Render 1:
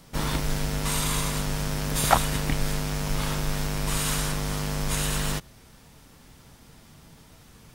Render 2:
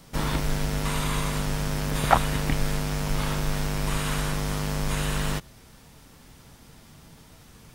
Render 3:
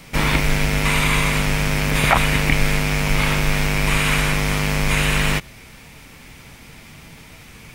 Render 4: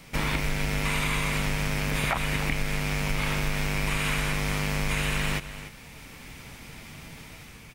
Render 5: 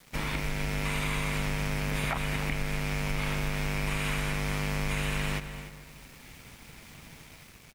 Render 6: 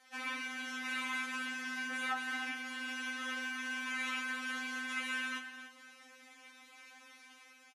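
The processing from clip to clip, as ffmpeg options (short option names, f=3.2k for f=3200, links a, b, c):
-filter_complex "[0:a]acrossover=split=3200[a][b];[b]acompressor=threshold=-36dB:ratio=4:attack=1:release=60[c];[a][c]amix=inputs=2:normalize=0,volume=1dB"
-af "equalizer=f=2.3k:t=o:w=0.6:g=12,alimiter=level_in=8dB:limit=-1dB:release=50:level=0:latency=1,volume=-1dB"
-af "dynaudnorm=f=190:g=5:m=4.5dB,aecho=1:1:295:0.141,acompressor=threshold=-16dB:ratio=6,volume=-6.5dB"
-filter_complex "[0:a]aeval=exprs='val(0)*gte(abs(val(0)),0.00562)':c=same,asplit=2[a][b];[b]adelay=220,lowpass=f=3.3k:p=1,volume=-14dB,asplit=2[c][d];[d]adelay=220,lowpass=f=3.3k:p=1,volume=0.52,asplit=2[e][f];[f]adelay=220,lowpass=f=3.3k:p=1,volume=0.52,asplit=2[g][h];[h]adelay=220,lowpass=f=3.3k:p=1,volume=0.52,asplit=2[i][j];[j]adelay=220,lowpass=f=3.3k:p=1,volume=0.52[k];[a][c][e][g][i][k]amix=inputs=6:normalize=0,volume=-5dB"
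-filter_complex "[0:a]highpass=f=340:w=0.5412,highpass=f=340:w=1.3066,equalizer=f=460:t=q:w=4:g=-5,equalizer=f=1.5k:t=q:w=4:g=5,equalizer=f=4.6k:t=q:w=4:g=-5,equalizer=f=8.3k:t=q:w=4:g=-9,lowpass=f=9.9k:w=0.5412,lowpass=f=9.9k:w=1.3066,asplit=2[a][b];[b]adelay=40,volume=-14dB[c];[a][c]amix=inputs=2:normalize=0,afftfilt=real='re*3.46*eq(mod(b,12),0)':imag='im*3.46*eq(mod(b,12),0)':win_size=2048:overlap=0.75,volume=-2.5dB"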